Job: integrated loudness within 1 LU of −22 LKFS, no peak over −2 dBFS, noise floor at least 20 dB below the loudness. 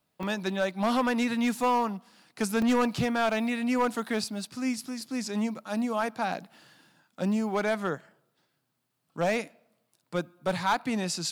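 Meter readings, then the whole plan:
share of clipped samples 0.8%; peaks flattened at −19.0 dBFS; number of dropouts 3; longest dropout 2.2 ms; integrated loudness −29.0 LKFS; sample peak −19.0 dBFS; target loudness −22.0 LKFS
→ clipped peaks rebuilt −19 dBFS
repair the gap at 0:00.23/0:02.62/0:05.01, 2.2 ms
level +7 dB

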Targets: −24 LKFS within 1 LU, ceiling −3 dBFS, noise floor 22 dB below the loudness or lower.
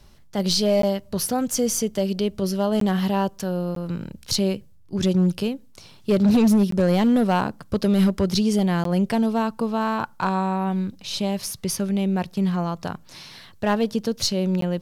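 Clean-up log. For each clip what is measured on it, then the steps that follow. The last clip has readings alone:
share of clipped samples 1.1%; peaks flattened at −13.0 dBFS; number of dropouts 6; longest dropout 13 ms; integrated loudness −22.5 LKFS; sample peak −13.0 dBFS; target loudness −24.0 LKFS
→ clipped peaks rebuilt −13 dBFS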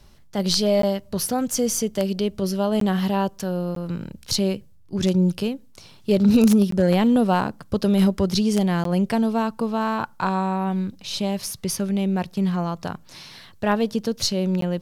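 share of clipped samples 0.0%; number of dropouts 6; longest dropout 13 ms
→ repair the gap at 0:00.82/0:02.80/0:03.75/0:06.71/0:08.84/0:14.61, 13 ms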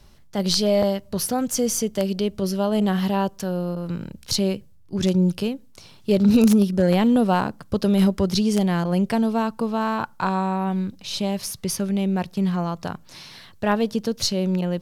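number of dropouts 0; integrated loudness −22.5 LKFS; sample peak −4.0 dBFS; target loudness −24.0 LKFS
→ level −1.5 dB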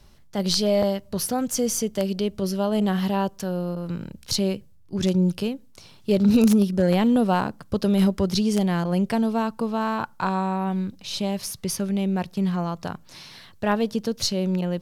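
integrated loudness −24.0 LKFS; sample peak −5.5 dBFS; background noise floor −50 dBFS

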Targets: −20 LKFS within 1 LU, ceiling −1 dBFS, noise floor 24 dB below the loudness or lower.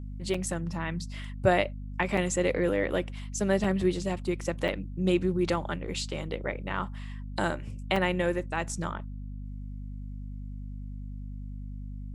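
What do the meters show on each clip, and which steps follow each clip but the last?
number of dropouts 5; longest dropout 4.3 ms; mains hum 50 Hz; hum harmonics up to 250 Hz; level of the hum −36 dBFS; integrated loudness −30.0 LKFS; sample peak −9.0 dBFS; target loudness −20.0 LKFS
→ repair the gap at 0:00.34/0:02.17/0:03.64/0:04.68/0:07.96, 4.3 ms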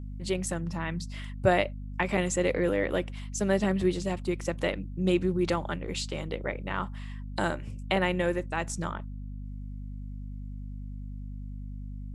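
number of dropouts 0; mains hum 50 Hz; hum harmonics up to 250 Hz; level of the hum −36 dBFS
→ hum removal 50 Hz, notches 5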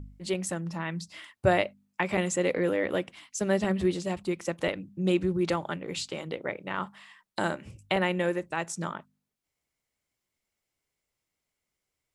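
mains hum none found; integrated loudness −30.0 LKFS; sample peak −9.5 dBFS; target loudness −20.0 LKFS
→ level +10 dB
brickwall limiter −1 dBFS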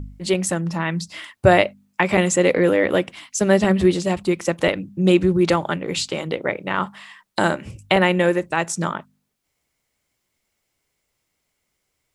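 integrated loudness −20.0 LKFS; sample peak −1.0 dBFS; background noise floor −75 dBFS

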